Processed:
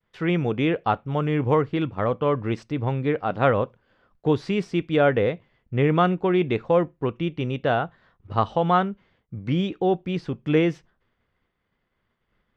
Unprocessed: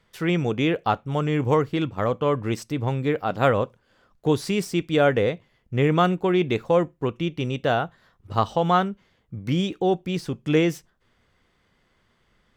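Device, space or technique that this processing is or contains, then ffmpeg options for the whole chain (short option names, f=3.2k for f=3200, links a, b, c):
hearing-loss simulation: -af "lowpass=3.1k,agate=range=-33dB:threshold=-58dB:ratio=3:detection=peak"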